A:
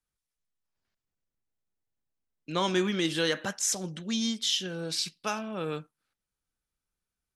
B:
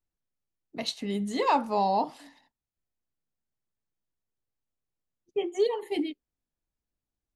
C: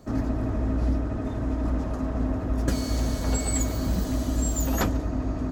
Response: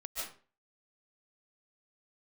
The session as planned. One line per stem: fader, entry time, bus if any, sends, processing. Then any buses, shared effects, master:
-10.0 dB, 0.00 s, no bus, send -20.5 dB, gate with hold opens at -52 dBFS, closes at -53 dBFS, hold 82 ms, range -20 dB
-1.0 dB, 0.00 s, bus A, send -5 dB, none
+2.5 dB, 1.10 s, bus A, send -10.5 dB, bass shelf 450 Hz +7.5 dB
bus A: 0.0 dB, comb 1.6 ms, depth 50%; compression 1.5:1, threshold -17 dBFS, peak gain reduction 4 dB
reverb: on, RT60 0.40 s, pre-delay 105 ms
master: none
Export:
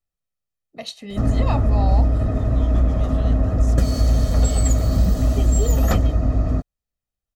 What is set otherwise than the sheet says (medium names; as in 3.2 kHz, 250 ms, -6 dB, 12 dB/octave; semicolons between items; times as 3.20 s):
stem A -10.0 dB -> -17.5 dB; stem B: send off; stem C: send off